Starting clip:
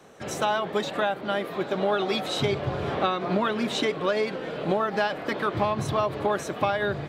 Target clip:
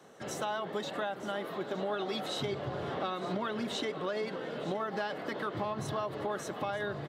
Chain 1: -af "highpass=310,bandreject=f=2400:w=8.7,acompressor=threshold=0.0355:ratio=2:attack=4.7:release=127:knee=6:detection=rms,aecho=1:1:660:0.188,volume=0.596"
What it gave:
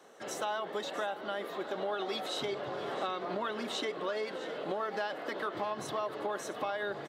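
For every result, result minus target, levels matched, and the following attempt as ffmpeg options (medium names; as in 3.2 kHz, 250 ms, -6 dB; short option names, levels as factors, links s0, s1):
125 Hz band -10.0 dB; echo 257 ms early
-af "highpass=110,bandreject=f=2400:w=8.7,acompressor=threshold=0.0355:ratio=2:attack=4.7:release=127:knee=6:detection=rms,aecho=1:1:660:0.188,volume=0.596"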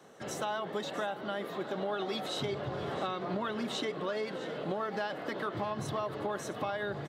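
echo 257 ms early
-af "highpass=110,bandreject=f=2400:w=8.7,acompressor=threshold=0.0355:ratio=2:attack=4.7:release=127:knee=6:detection=rms,aecho=1:1:917:0.188,volume=0.596"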